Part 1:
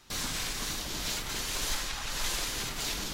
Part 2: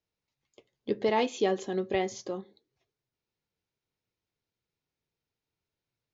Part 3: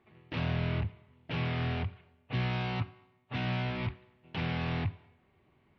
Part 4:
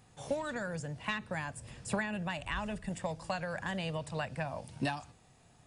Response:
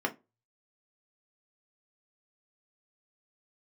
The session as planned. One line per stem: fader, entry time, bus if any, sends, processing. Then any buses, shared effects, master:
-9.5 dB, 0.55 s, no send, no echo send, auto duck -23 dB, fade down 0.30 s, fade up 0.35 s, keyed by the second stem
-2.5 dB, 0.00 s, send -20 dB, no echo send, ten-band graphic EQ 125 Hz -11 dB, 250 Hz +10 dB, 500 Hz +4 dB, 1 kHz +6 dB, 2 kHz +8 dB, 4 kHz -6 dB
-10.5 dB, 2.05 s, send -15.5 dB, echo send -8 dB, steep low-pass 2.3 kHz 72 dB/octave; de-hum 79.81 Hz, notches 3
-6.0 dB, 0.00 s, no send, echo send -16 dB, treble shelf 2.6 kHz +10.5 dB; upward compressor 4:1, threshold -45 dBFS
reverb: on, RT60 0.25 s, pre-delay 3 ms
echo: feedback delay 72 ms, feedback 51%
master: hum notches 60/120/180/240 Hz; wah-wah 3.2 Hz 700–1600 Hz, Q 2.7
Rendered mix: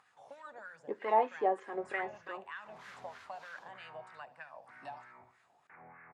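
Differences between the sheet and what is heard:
stem 3: entry 2.05 s -> 1.35 s; reverb return -9.5 dB

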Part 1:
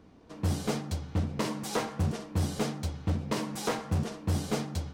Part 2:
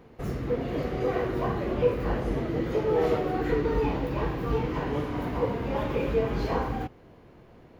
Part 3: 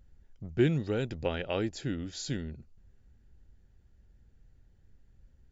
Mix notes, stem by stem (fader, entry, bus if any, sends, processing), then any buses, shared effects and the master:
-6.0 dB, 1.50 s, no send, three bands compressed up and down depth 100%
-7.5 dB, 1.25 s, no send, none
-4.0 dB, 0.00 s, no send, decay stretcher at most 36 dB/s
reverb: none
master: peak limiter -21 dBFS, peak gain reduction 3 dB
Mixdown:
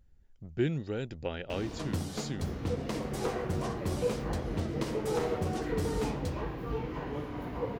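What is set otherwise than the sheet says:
stem 2: entry 1.25 s -> 2.20 s; stem 3: missing decay stretcher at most 36 dB/s; master: missing peak limiter -21 dBFS, peak gain reduction 3 dB

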